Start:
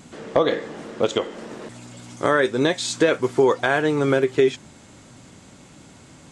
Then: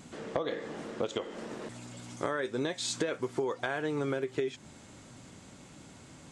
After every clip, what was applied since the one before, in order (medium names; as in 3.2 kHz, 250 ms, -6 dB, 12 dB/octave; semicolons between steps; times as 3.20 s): compression 6:1, threshold -24 dBFS, peak gain reduction 11 dB; trim -5 dB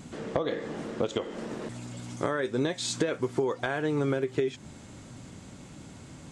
bass shelf 280 Hz +6.5 dB; trim +2 dB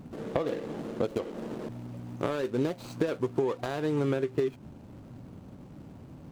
median filter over 25 samples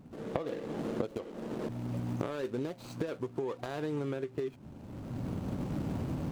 recorder AGC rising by 21 dB/s; trim -8 dB